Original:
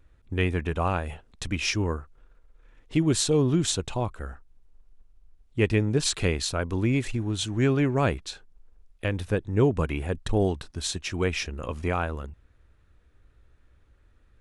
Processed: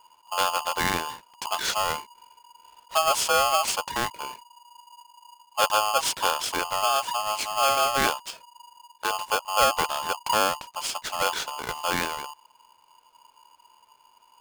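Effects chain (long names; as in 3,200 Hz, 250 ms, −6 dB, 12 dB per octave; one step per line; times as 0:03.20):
ring modulator with a square carrier 960 Hz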